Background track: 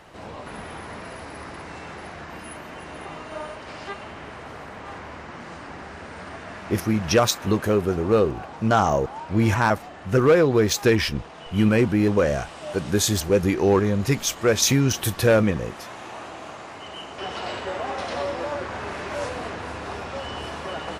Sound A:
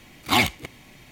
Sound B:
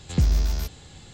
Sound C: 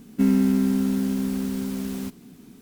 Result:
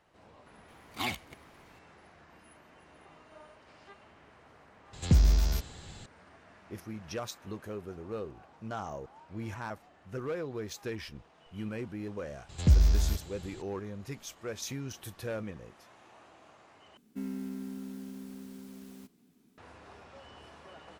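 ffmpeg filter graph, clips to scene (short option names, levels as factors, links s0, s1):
-filter_complex "[2:a]asplit=2[s0][s1];[0:a]volume=0.106[s2];[s1]equalizer=f=72:w=1.5:g=5.5[s3];[3:a]lowshelf=f=110:g=-8.5[s4];[s2]asplit=2[s5][s6];[s5]atrim=end=16.974[s7];[s4]atrim=end=2.61,asetpts=PTS-STARTPTS,volume=0.141[s8];[s6]atrim=start=19.576[s9];[1:a]atrim=end=1.11,asetpts=PTS-STARTPTS,volume=0.188,afade=t=in:d=0.004:c=hsin,afade=t=out:st=1.106:d=0.004:c=hsin,adelay=680[s10];[s0]atrim=end=1.13,asetpts=PTS-STARTPTS,volume=0.794,afade=t=in:d=0.004:c=hsin,afade=t=out:st=1.126:d=0.004:c=hsin,adelay=217413S[s11];[s3]atrim=end=1.13,asetpts=PTS-STARTPTS,volume=0.596,afade=t=in:d=0.004:c=hsin,afade=t=out:st=1.126:d=0.004:c=hsin,adelay=12490[s12];[s7][s8]acrossfade=d=0.004:c1=hsin:c2=hsin[s13];[s13][s9]acrossfade=d=0.004:c1=hsin:c2=hsin[s14];[s14][s10][s11][s12]amix=inputs=4:normalize=0"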